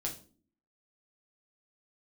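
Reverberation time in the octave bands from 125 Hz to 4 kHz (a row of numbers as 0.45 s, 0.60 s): 0.60 s, 0.75 s, 0.50 s, 0.35 s, 0.30 s, 0.30 s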